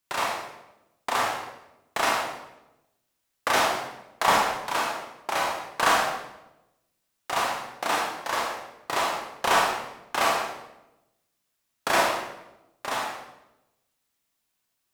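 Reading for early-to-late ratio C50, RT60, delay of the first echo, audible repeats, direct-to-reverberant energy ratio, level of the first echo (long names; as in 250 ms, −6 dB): 2.5 dB, 0.95 s, no echo audible, no echo audible, −2.5 dB, no echo audible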